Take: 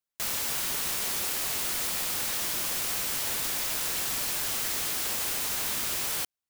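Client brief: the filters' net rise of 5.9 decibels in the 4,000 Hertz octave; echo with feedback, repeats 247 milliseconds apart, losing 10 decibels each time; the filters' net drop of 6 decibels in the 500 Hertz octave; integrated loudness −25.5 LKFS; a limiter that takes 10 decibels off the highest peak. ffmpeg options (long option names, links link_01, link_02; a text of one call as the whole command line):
ffmpeg -i in.wav -af "equalizer=frequency=500:width_type=o:gain=-8,equalizer=frequency=4000:width_type=o:gain=7.5,alimiter=level_in=1.5dB:limit=-24dB:level=0:latency=1,volume=-1.5dB,aecho=1:1:247|494|741|988:0.316|0.101|0.0324|0.0104,volume=6dB" out.wav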